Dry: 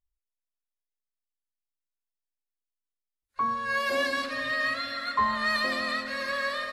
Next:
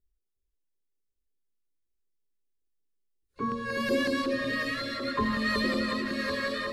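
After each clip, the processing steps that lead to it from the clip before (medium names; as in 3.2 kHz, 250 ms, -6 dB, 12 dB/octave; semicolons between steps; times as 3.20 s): resonant low shelf 550 Hz +9.5 dB, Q 3; echo whose repeats swap between lows and highs 365 ms, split 1 kHz, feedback 76%, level -5 dB; LFO notch saw down 5.4 Hz 220–2600 Hz; trim -2 dB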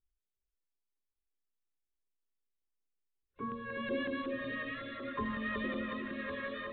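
resampled via 8 kHz; trim -8.5 dB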